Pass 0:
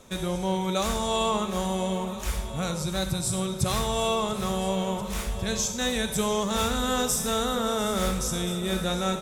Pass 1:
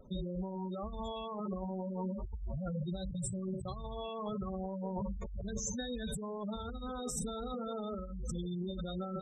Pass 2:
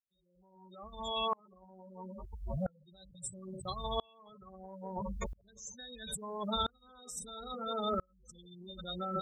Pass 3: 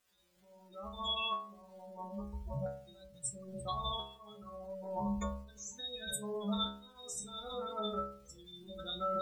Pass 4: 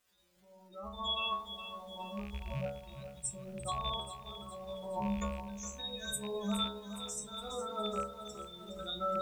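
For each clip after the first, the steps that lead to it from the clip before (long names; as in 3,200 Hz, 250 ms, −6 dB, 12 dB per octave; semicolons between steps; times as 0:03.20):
gate on every frequency bin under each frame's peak −10 dB strong; low-shelf EQ 95 Hz +7.5 dB; compressor whose output falls as the input rises −31 dBFS, ratio −1; level −8 dB
fade in at the beginning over 1.41 s; tilt shelving filter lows −7.5 dB, about 840 Hz; tremolo with a ramp in dB swelling 0.75 Hz, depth 35 dB; level +11.5 dB
downward compressor 4 to 1, threshold −38 dBFS, peak gain reduction 8.5 dB; surface crackle 550 per second −63 dBFS; stiff-string resonator 67 Hz, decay 0.66 s, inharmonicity 0.002; level +14.5 dB
loose part that buzzes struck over −42 dBFS, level −39 dBFS; feedback echo at a low word length 415 ms, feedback 55%, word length 10 bits, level −10 dB; level +1 dB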